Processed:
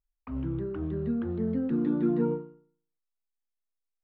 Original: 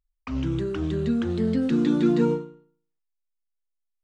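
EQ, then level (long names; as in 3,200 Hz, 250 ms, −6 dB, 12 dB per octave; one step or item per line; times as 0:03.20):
low-pass filter 1,300 Hz 12 dB per octave
−5.5 dB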